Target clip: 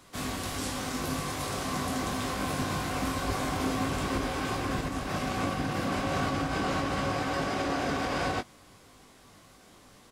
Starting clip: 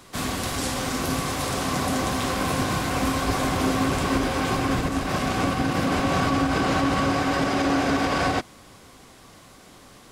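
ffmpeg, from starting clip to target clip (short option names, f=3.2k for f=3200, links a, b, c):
-filter_complex "[0:a]asplit=2[a][b];[b]adelay=20,volume=-6.5dB[c];[a][c]amix=inputs=2:normalize=0,volume=-7.5dB"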